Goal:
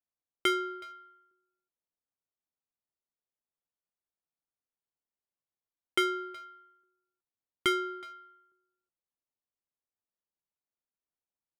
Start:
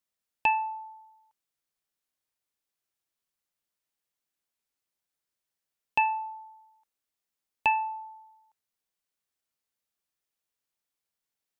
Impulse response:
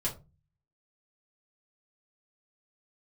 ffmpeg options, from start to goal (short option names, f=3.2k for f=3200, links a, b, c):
-filter_complex "[0:a]adynamicsmooth=sensitivity=5:basefreq=910,aeval=exprs='val(0)*sin(2*PI*510*n/s)':c=same,asplit=2[a][b];[b]adelay=370,highpass=300,lowpass=3.4k,asoftclip=type=hard:threshold=-25dB,volume=-18dB[c];[a][c]amix=inputs=2:normalize=0"